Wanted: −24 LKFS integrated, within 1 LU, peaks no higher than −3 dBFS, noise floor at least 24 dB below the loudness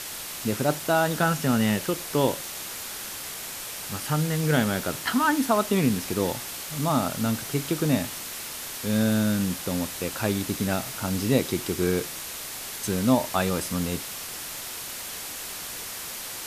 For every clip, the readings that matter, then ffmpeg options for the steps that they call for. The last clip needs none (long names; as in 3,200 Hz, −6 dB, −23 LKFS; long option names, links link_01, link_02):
background noise floor −36 dBFS; target noise floor −51 dBFS; integrated loudness −26.5 LKFS; sample peak −8.5 dBFS; target loudness −24.0 LKFS
→ -af "afftdn=noise_reduction=15:noise_floor=-36"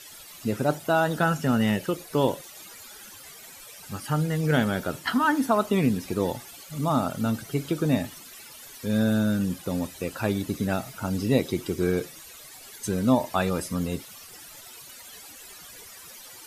background noise floor −46 dBFS; target noise floor −50 dBFS
→ -af "afftdn=noise_reduction=6:noise_floor=-46"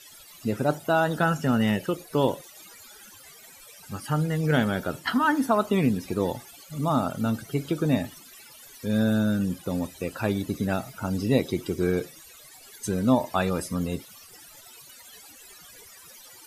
background noise floor −49 dBFS; target noise floor −50 dBFS
→ -af "afftdn=noise_reduction=6:noise_floor=-49"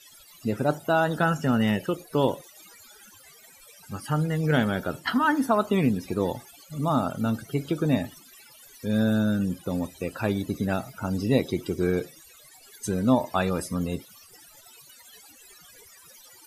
background noise floor −52 dBFS; integrated loudness −26.0 LKFS; sample peak −9.0 dBFS; target loudness −24.0 LKFS
→ -af "volume=2dB"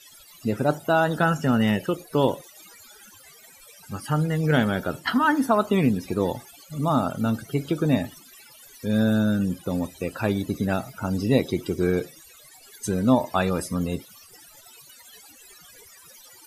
integrated loudness −24.0 LKFS; sample peak −7.0 dBFS; background noise floor −50 dBFS